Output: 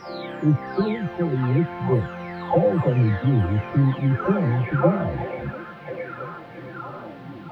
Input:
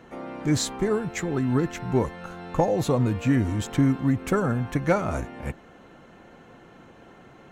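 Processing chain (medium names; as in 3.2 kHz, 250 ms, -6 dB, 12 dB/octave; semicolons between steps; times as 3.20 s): delay that grows with frequency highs early, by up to 879 ms; high-pass 58 Hz; harmonic-percussive split harmonic +5 dB; in parallel at -9 dB: word length cut 6-bit, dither triangular; on the sum: distance through air 390 m; repeats whose band climbs or falls 669 ms, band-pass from 3.3 kHz, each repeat -0.7 oct, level -1 dB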